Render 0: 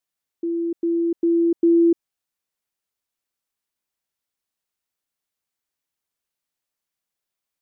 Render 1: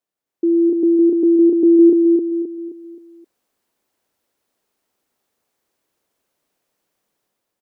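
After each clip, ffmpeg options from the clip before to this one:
-filter_complex "[0:a]equalizer=f=410:t=o:w=2.9:g=12,dynaudnorm=f=220:g=5:m=3.76,asplit=2[s0][s1];[s1]aecho=0:1:263|526|789|1052|1315:0.631|0.259|0.106|0.0435|0.0178[s2];[s0][s2]amix=inputs=2:normalize=0,volume=0.596"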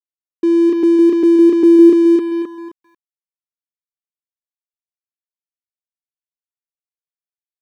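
-af "aeval=exprs='sgn(val(0))*max(abs(val(0))-0.0211,0)':c=same,volume=1.5"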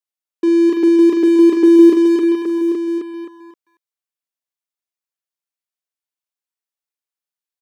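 -af "highpass=f=410:p=1,aecho=1:1:42|55|823:0.355|0.15|0.376,volume=1.41"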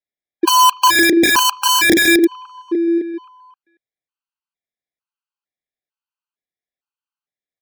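-af "lowpass=3300,aeval=exprs='(mod(2.82*val(0)+1,2)-1)/2.82':c=same,afftfilt=real='re*gt(sin(2*PI*1.1*pts/sr)*(1-2*mod(floor(b*sr/1024/810),2)),0)':imag='im*gt(sin(2*PI*1.1*pts/sr)*(1-2*mod(floor(b*sr/1024/810),2)),0)':win_size=1024:overlap=0.75,volume=1.58"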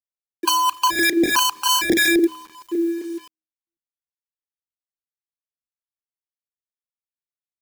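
-filter_complex "[0:a]bandreject=f=79.53:t=h:w=4,bandreject=f=159.06:t=h:w=4,bandreject=f=238.59:t=h:w=4,bandreject=f=318.12:t=h:w=4,bandreject=f=397.65:t=h:w=4,bandreject=f=477.18:t=h:w=4,bandreject=f=556.71:t=h:w=4,acrossover=split=750[s0][s1];[s0]aeval=exprs='val(0)*(1-0.7/2+0.7/2*cos(2*PI*3.2*n/s))':c=same[s2];[s1]aeval=exprs='val(0)*(1-0.7/2-0.7/2*cos(2*PI*3.2*n/s))':c=same[s3];[s2][s3]amix=inputs=2:normalize=0,acrossover=split=140[s4][s5];[s5]acrusher=bits=6:mix=0:aa=0.000001[s6];[s4][s6]amix=inputs=2:normalize=0,volume=0.75"

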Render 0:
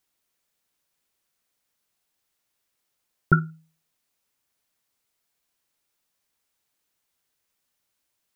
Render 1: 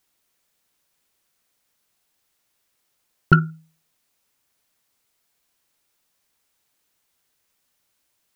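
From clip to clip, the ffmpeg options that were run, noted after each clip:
-af "acontrast=44"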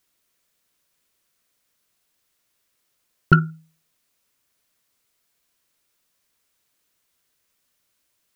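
-af "equalizer=f=820:t=o:w=0.21:g=-7"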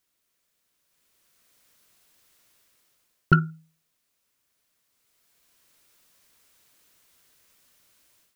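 -af "dynaudnorm=f=820:g=3:m=5.01,volume=0.562"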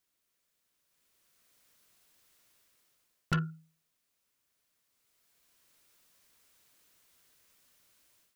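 -af "asoftclip=type=tanh:threshold=0.1,volume=0.596"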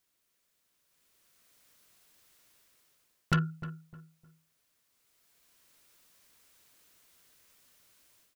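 -filter_complex "[0:a]asplit=2[s0][s1];[s1]adelay=306,lowpass=f=1400:p=1,volume=0.224,asplit=2[s2][s3];[s3]adelay=306,lowpass=f=1400:p=1,volume=0.3,asplit=2[s4][s5];[s5]adelay=306,lowpass=f=1400:p=1,volume=0.3[s6];[s0][s2][s4][s6]amix=inputs=4:normalize=0,volume=1.41"

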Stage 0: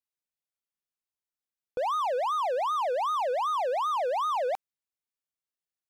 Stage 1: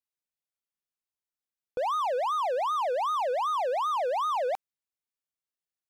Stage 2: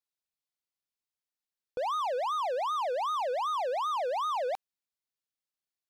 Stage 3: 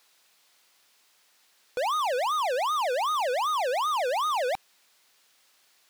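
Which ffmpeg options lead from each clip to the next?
-af anull
-af "equalizer=f=4300:w=1.5:g=4.5,volume=0.708"
-filter_complex "[0:a]asplit=2[s0][s1];[s1]highpass=f=720:p=1,volume=70.8,asoftclip=type=tanh:threshold=0.0562[s2];[s0][s2]amix=inputs=2:normalize=0,lowpass=f=5600:p=1,volume=0.501,volume=1.26"

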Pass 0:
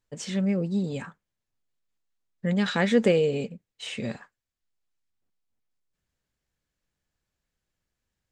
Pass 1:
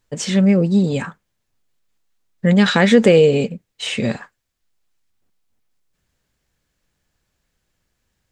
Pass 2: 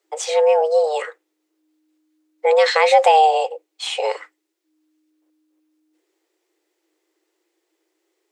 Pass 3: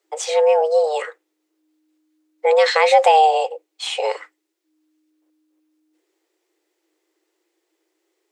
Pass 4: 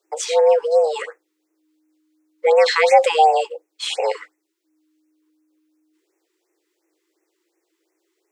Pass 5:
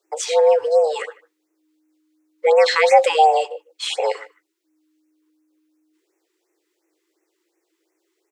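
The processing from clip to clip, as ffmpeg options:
-af "alimiter=level_in=4.22:limit=0.891:release=50:level=0:latency=1,volume=0.891"
-af "afreqshift=310,volume=0.841"
-af anull
-af "afftfilt=real='re*(1-between(b*sr/1024,590*pow(4000/590,0.5+0.5*sin(2*PI*2.8*pts/sr))/1.41,590*pow(4000/590,0.5+0.5*sin(2*PI*2.8*pts/sr))*1.41))':imag='im*(1-between(b*sr/1024,590*pow(4000/590,0.5+0.5*sin(2*PI*2.8*pts/sr))/1.41,590*pow(4000/590,0.5+0.5*sin(2*PI*2.8*pts/sr))*1.41))':win_size=1024:overlap=0.75,volume=1.12"
-filter_complex "[0:a]asplit=2[s0][s1];[s1]adelay=150,highpass=300,lowpass=3400,asoftclip=type=hard:threshold=0.282,volume=0.0794[s2];[s0][s2]amix=inputs=2:normalize=0"

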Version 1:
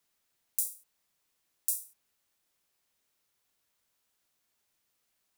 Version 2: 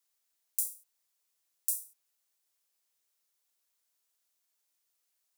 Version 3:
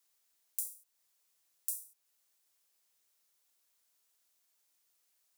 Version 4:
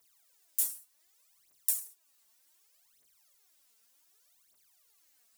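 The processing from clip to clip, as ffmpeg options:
-af "bass=f=250:g=-14,treble=f=4000:g=7,volume=0.422"
-af "acompressor=threshold=0.00251:ratio=1.5,volume=1.5"
-af "aphaser=in_gain=1:out_gain=1:delay=4.7:decay=0.8:speed=0.66:type=triangular,volume=1.41"

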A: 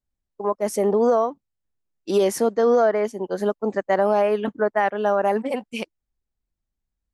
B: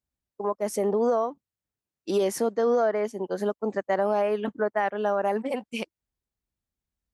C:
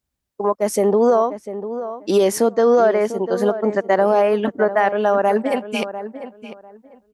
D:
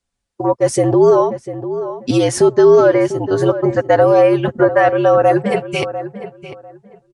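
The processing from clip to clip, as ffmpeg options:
-filter_complex "[0:a]highpass=55,asplit=2[s0][s1];[s1]acompressor=threshold=0.0447:ratio=6,volume=1.06[s2];[s0][s2]amix=inputs=2:normalize=0,volume=0.422"
-filter_complex "[0:a]asplit=2[s0][s1];[s1]adelay=697,lowpass=f=1900:p=1,volume=0.266,asplit=2[s2][s3];[s3]adelay=697,lowpass=f=1900:p=1,volume=0.21,asplit=2[s4][s5];[s5]adelay=697,lowpass=f=1900:p=1,volume=0.21[s6];[s0][s2][s4][s6]amix=inputs=4:normalize=0,volume=2.66"
-af "aecho=1:1:6.5:0.57,aresample=22050,aresample=44100,afreqshift=-71,volume=1.41"

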